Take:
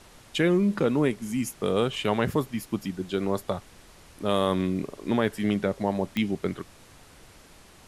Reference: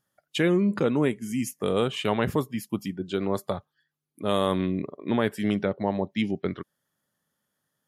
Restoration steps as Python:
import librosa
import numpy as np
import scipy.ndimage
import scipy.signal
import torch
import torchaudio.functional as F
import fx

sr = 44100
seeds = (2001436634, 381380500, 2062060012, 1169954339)

y = fx.fix_declick_ar(x, sr, threshold=10.0)
y = fx.noise_reduce(y, sr, print_start_s=7.32, print_end_s=7.82, reduce_db=28.0)